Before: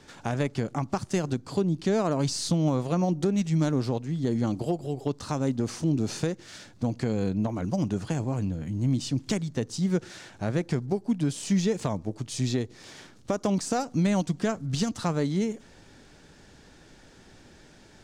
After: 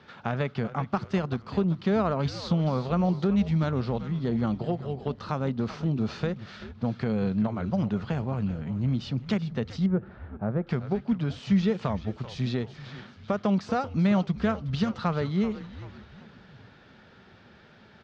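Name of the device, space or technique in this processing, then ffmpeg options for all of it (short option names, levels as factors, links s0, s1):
frequency-shifting delay pedal into a guitar cabinet: -filter_complex "[0:a]asplit=6[s0][s1][s2][s3][s4][s5];[s1]adelay=386,afreqshift=-110,volume=0.224[s6];[s2]adelay=772,afreqshift=-220,volume=0.104[s7];[s3]adelay=1158,afreqshift=-330,volume=0.0473[s8];[s4]adelay=1544,afreqshift=-440,volume=0.0219[s9];[s5]adelay=1930,afreqshift=-550,volume=0.01[s10];[s0][s6][s7][s8][s9][s10]amix=inputs=6:normalize=0,highpass=81,equalizer=f=210:t=q:w=4:g=4,equalizer=f=300:t=q:w=4:g=-10,equalizer=f=1300:t=q:w=4:g=6,lowpass=f=4000:w=0.5412,lowpass=f=4000:w=1.3066,asettb=1/sr,asplit=3[s11][s12][s13];[s11]atrim=end=9.864[s14];[s12]atrim=start=9.86:end=10.67,asetpts=PTS-STARTPTS,afade=t=in:d=0.004:c=qsin,afade=t=out:st=0.806:d=0.004:c=qsin,lowpass=1000[s15];[s13]atrim=start=10.666[s16];[s14][s15]acrossfade=d=0.004:c1=hsin:c2=qsin[s17];[s17][s16]acrossfade=d=0.004:c1=qsin:c2=hsin"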